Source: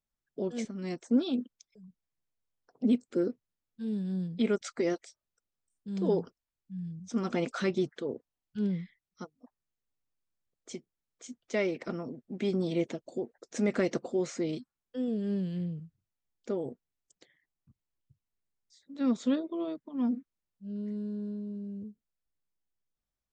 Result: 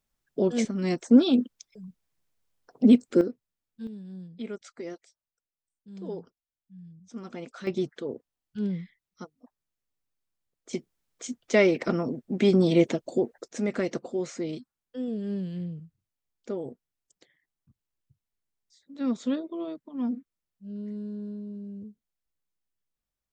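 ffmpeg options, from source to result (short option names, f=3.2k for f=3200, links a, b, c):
-af "asetnsamples=n=441:p=0,asendcmd='3.21 volume volume 0dB;3.87 volume volume -8.5dB;7.67 volume volume 1dB;10.73 volume volume 9.5dB;13.48 volume volume 0dB',volume=9dB"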